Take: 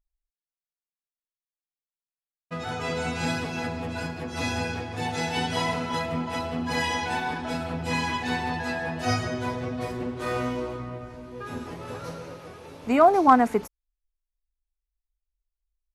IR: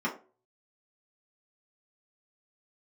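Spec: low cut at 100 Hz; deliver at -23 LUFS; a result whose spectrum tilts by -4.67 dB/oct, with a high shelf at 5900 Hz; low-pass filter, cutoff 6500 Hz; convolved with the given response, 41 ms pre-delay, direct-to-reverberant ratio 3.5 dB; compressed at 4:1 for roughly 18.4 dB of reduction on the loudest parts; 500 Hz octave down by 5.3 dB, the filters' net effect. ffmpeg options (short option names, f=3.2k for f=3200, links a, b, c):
-filter_complex "[0:a]highpass=100,lowpass=6.5k,equalizer=f=500:t=o:g=-7.5,highshelf=f=5.9k:g=-7.5,acompressor=threshold=-36dB:ratio=4,asplit=2[a][b];[1:a]atrim=start_sample=2205,adelay=41[c];[b][c]afir=irnorm=-1:irlink=0,volume=-12dB[d];[a][d]amix=inputs=2:normalize=0,volume=12dB"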